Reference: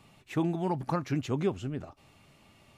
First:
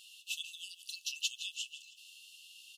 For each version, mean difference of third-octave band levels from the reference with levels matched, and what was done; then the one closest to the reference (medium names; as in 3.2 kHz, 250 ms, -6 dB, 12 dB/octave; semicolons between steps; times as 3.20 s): 25.0 dB: brick-wall FIR high-pass 2.6 kHz; on a send: feedback delay 159 ms, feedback 46%, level -15 dB; on the sum: trim +11.5 dB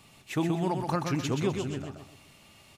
6.0 dB: treble shelf 2.5 kHz +9 dB; on a send: feedback delay 126 ms, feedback 36%, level -5.5 dB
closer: second